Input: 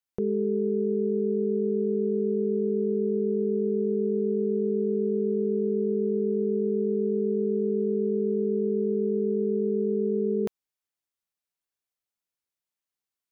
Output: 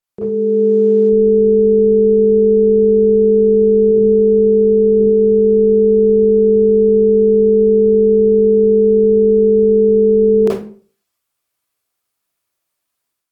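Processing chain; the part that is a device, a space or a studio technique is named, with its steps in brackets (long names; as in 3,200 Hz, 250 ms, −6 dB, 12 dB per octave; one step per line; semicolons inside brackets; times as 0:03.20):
0:03.91–0:05.00: high-pass filter 91 Hz 12 dB per octave
far-field microphone of a smart speaker (convolution reverb RT60 0.45 s, pre-delay 26 ms, DRR −7.5 dB; high-pass filter 120 Hz 6 dB per octave; automatic gain control gain up to 9.5 dB; Opus 24 kbit/s 48,000 Hz)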